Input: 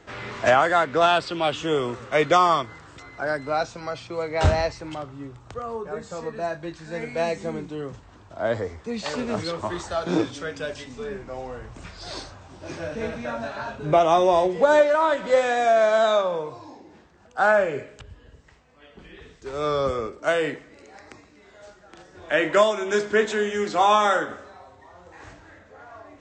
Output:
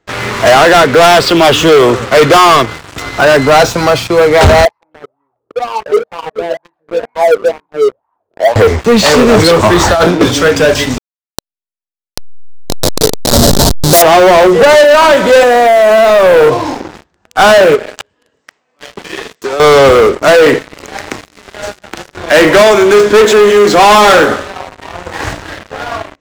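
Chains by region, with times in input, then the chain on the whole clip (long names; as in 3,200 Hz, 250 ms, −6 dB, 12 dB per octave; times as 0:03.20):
0:04.65–0:08.56: low-pass filter 2,900 Hz + LFO wah 2.1 Hz 410–1,000 Hz, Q 8.9
0:09.81–0:10.21: notch filter 420 Hz + compressor whose output falls as the input rises −32 dBFS + high-frequency loss of the air 79 metres
0:10.98–0:14.02: hold until the input has moved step −22.5 dBFS + drawn EQ curve 560 Hz 0 dB, 2,500 Hz −9 dB, 4,000 Hz +15 dB
0:15.43–0:16.65: high-pass filter 190 Hz 6 dB per octave + downward compressor, threshold −26 dBFS + tilt shelving filter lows +4 dB, about 1,300 Hz
0:17.75–0:19.60: high-pass filter 290 Hz + dynamic equaliser 720 Hz, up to +5 dB, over −53 dBFS, Q 1.8 + downward compressor 16 to 1, threshold −38 dBFS
whole clip: dynamic equaliser 440 Hz, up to +6 dB, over −36 dBFS, Q 3; automatic gain control gain up to 8.5 dB; leveller curve on the samples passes 5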